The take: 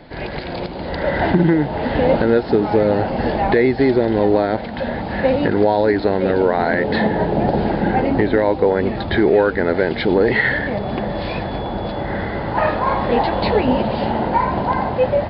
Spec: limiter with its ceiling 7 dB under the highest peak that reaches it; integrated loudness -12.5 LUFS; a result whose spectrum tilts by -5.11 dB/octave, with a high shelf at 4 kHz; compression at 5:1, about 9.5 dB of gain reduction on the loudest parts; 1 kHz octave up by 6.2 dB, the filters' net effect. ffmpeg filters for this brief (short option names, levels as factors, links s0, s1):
-af "equalizer=f=1000:t=o:g=8,highshelf=f=4000:g=-4,acompressor=threshold=0.126:ratio=5,volume=3.55,alimiter=limit=0.75:level=0:latency=1"